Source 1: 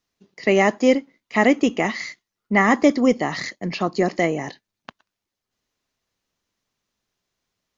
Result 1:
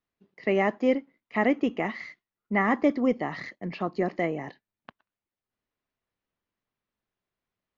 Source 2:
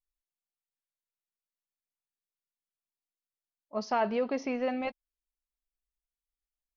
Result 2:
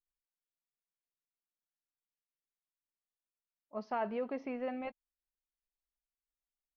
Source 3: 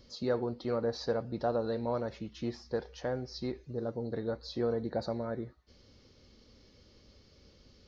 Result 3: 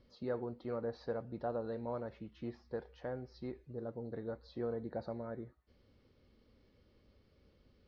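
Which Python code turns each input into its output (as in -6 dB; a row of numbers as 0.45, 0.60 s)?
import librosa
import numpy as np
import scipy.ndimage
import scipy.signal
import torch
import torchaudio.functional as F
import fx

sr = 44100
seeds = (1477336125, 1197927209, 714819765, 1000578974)

y = scipy.signal.sosfilt(scipy.signal.butter(2, 2600.0, 'lowpass', fs=sr, output='sos'), x)
y = y * librosa.db_to_amplitude(-7.0)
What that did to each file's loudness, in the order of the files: -7.5, -7.0, -7.0 LU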